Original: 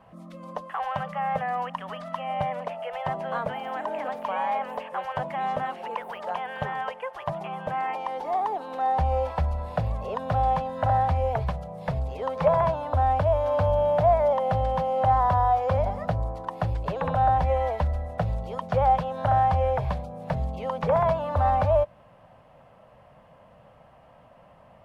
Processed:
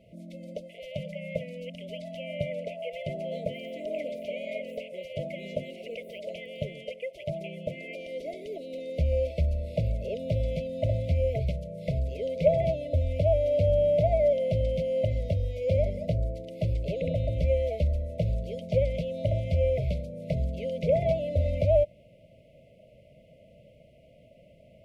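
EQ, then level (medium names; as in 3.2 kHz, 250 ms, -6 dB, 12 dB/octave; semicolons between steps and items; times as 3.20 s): brick-wall FIR band-stop 680–2000 Hz; 0.0 dB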